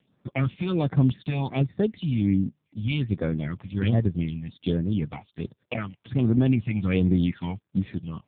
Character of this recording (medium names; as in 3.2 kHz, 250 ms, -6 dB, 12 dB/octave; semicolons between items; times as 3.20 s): phasing stages 6, 1.3 Hz, lowest notch 380–3000 Hz; AMR-NB